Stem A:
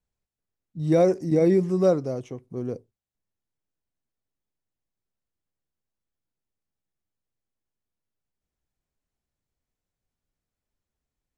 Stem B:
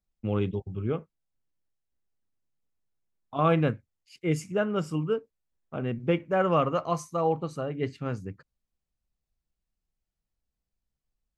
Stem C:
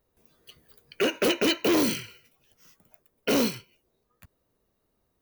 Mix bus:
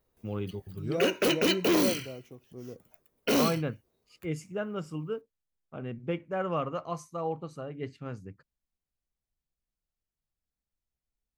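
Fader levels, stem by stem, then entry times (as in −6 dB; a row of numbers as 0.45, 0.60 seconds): −12.5, −7.0, −2.0 decibels; 0.00, 0.00, 0.00 seconds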